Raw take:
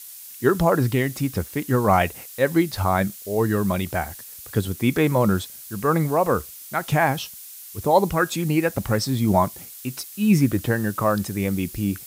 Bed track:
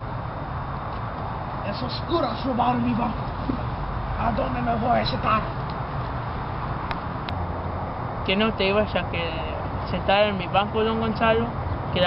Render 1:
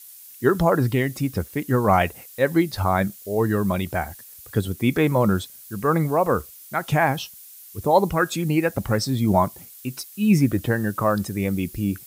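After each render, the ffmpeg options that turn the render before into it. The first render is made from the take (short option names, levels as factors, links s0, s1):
-af "afftdn=nr=6:nf=-41"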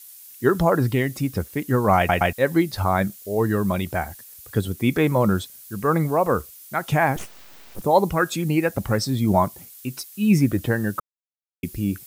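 -filter_complex "[0:a]asettb=1/sr,asplit=3[s0][s1][s2];[s0]atrim=end=7.164[s3];[s1]atrim=start=7.16:end=7.82,asetpts=PTS-STARTPTS,afade=t=in:d=0.004:c=qsin,afade=t=out:st=0.656:d=0.004:c=qsin,aeval=exprs='abs(val(0))':c=same[s4];[s2]atrim=start=7.816[s5];[s3][s4]acrossfade=d=0.004:c1=hsin:c2=qsin[s6];[s6][s5]acrossfade=d=0.004:c1=qsin:c2=hsin,asplit=6[s7][s8][s9][s10][s11][s12];[s7]atrim=end=2.092[s13];[s8]atrim=start=1.968:end=2.092[s14];[s9]atrim=start=1.968:end=2.092[s15];[s10]atrim=start=2.328:end=11,asetpts=PTS-STARTPTS,afade=t=out:st=8.668:d=0.004:c=hsin[s16];[s11]atrim=start=11:end=11.63,asetpts=PTS-STARTPTS,volume=0[s17];[s12]atrim=start=11.63,asetpts=PTS-STARTPTS,afade=t=in:d=0.004:c=hsin[s18];[s13][s14]acrossfade=d=0.004:c1=hsin:c2=hsin[s19];[s19][s15]acrossfade=d=0.004:c1=hsin:c2=hsin[s20];[s16][s17][s18]concat=n=3:v=0:a=1[s21];[s20][s21]acrossfade=d=0.004:c1=hsin:c2=hsin"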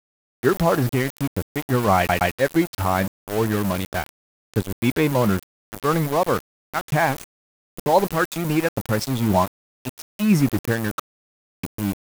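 -af "aeval=exprs='val(0)*gte(abs(val(0)),0.0596)':c=same"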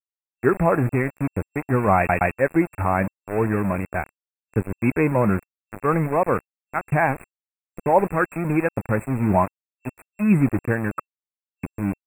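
-filter_complex "[0:a]afftfilt=real='re*(1-between(b*sr/4096,2700,7500))':imag='im*(1-between(b*sr/4096,2700,7500))':win_size=4096:overlap=0.75,acrossover=split=5900[s0][s1];[s1]acompressor=threshold=0.00282:ratio=4:attack=1:release=60[s2];[s0][s2]amix=inputs=2:normalize=0"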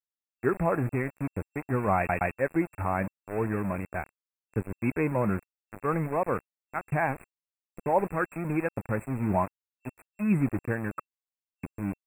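-af "volume=0.422"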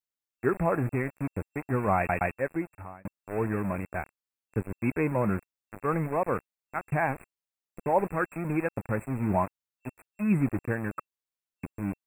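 -filter_complex "[0:a]asplit=2[s0][s1];[s0]atrim=end=3.05,asetpts=PTS-STARTPTS,afade=t=out:st=2.25:d=0.8[s2];[s1]atrim=start=3.05,asetpts=PTS-STARTPTS,afade=t=in:d=0.004:c=hsin[s3];[s2][s3]concat=n=2:v=0:a=1"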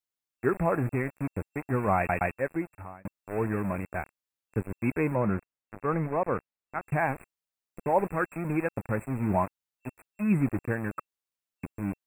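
-filter_complex "[0:a]asettb=1/sr,asplit=3[s0][s1][s2];[s0]atrim=end=5.154[s3];[s1]atrim=start=5.15:end=6.83,asetpts=PTS-STARTPTS,afade=t=in:d=0.004:c=qsin,afade=t=out:st=1.676:d=0.004:c=qsin,highshelf=f=4400:g=-12[s4];[s2]atrim=start=6.826[s5];[s3][s4]acrossfade=d=0.004:c1=hsin:c2=qsin[s6];[s6][s5]acrossfade=d=0.004:c1=qsin:c2=hsin"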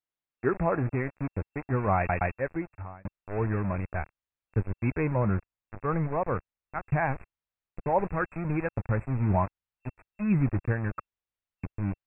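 -af "asubboost=boost=3.5:cutoff=120,lowpass=2800"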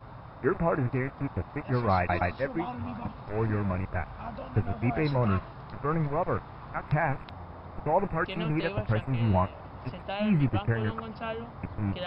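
-filter_complex "[1:a]volume=0.178[s0];[0:a][s0]amix=inputs=2:normalize=0"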